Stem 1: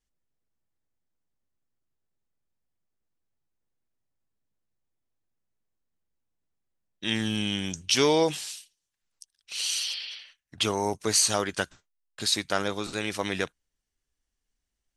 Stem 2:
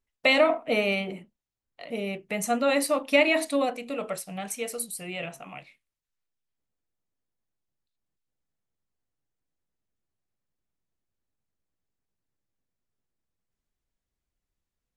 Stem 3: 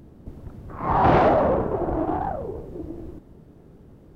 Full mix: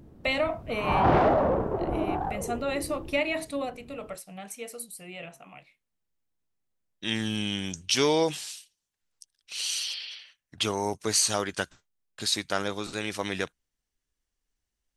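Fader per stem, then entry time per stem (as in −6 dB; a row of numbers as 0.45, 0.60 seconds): −1.5, −6.5, −4.0 decibels; 0.00, 0.00, 0.00 seconds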